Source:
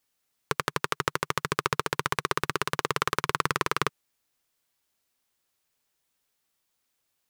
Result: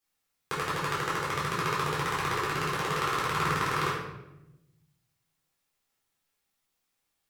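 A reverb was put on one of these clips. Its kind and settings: shoebox room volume 350 m³, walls mixed, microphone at 3.8 m; gain -11 dB

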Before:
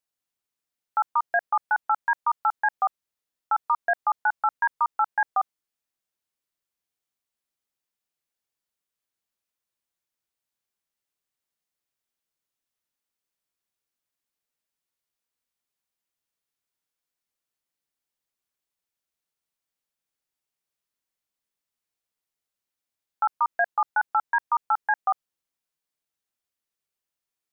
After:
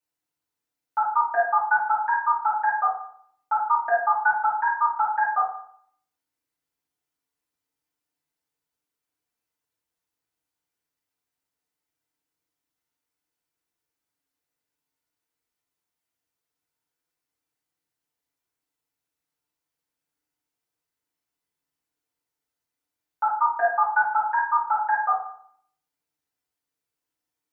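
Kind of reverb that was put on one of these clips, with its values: FDN reverb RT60 0.61 s, low-frequency decay 1.1×, high-frequency decay 0.45×, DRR -9 dB; gain -6.5 dB

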